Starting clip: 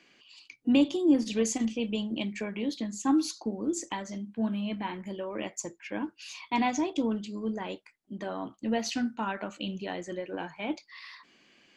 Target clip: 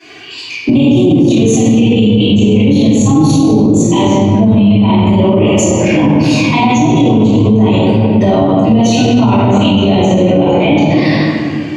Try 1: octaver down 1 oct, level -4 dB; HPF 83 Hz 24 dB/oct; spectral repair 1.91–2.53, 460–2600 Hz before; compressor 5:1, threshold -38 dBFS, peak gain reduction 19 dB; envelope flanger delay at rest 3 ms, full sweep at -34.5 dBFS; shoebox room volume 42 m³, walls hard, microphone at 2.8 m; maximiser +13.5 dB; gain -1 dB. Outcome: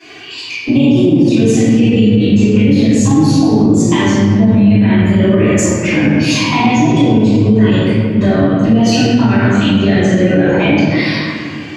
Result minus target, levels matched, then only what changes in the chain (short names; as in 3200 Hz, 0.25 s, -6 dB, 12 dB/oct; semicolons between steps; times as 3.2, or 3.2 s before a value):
compressor: peak gain reduction +9 dB
change: compressor 5:1, threshold -26.5 dBFS, peak gain reduction 10 dB